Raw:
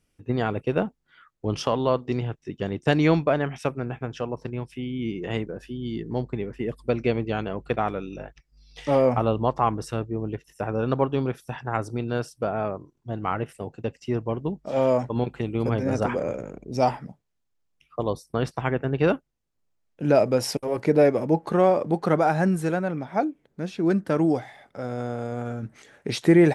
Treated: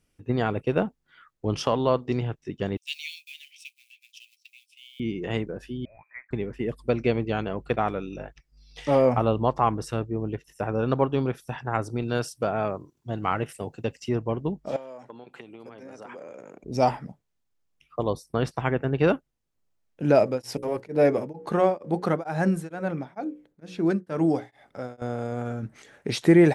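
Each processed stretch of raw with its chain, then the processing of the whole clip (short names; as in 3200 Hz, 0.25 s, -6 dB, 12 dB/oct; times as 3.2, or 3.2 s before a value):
2.77–5 G.711 law mismatch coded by A + steep high-pass 2400 Hz 72 dB/oct + doubler 12 ms -13 dB
5.85–6.31 HPF 890 Hz 24 dB/oct + upward compressor, threshold -55 dBFS + inverted band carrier 2800 Hz
12.02–14.09 HPF 43 Hz + high shelf 2600 Hz +7.5 dB
14.76–16.64 compressor 10:1, threshold -34 dBFS + HPF 190 Hz + low shelf 370 Hz -7.5 dB
20.2–25.02 notches 60/120/180/240/300/360/420/480/540 Hz + beating tremolo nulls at 2.2 Hz
whole clip: dry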